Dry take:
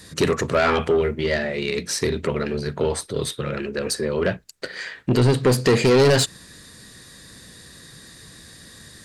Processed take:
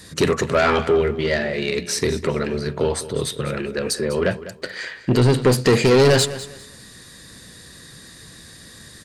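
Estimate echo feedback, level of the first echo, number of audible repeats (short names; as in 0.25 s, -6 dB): 25%, -15.0 dB, 2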